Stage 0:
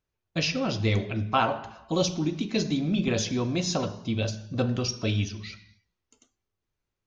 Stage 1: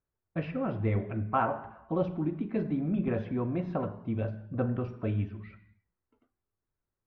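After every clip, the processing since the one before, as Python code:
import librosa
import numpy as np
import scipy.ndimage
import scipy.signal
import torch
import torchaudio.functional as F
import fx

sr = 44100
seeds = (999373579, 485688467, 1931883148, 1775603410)

y = scipy.signal.sosfilt(scipy.signal.butter(4, 1800.0, 'lowpass', fs=sr, output='sos'), x)
y = y * librosa.db_to_amplitude(-3.5)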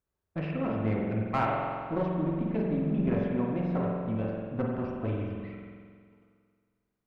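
y = fx.diode_clip(x, sr, knee_db=-28.0)
y = fx.rev_spring(y, sr, rt60_s=1.9, pass_ms=(45,), chirp_ms=50, drr_db=-1.0)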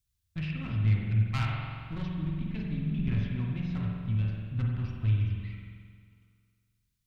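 y = fx.curve_eq(x, sr, hz=(120.0, 190.0, 540.0, 3600.0), db=(0, -13, -30, 0))
y = y * librosa.db_to_amplitude(8.5)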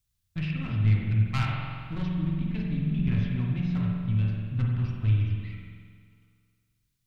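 y = fx.room_shoebox(x, sr, seeds[0], volume_m3=340.0, walls='furnished', distance_m=0.41)
y = y * librosa.db_to_amplitude(2.5)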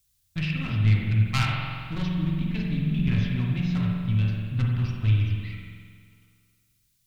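y = fx.high_shelf(x, sr, hz=2800.0, db=10.5)
y = y * librosa.db_to_amplitude(2.0)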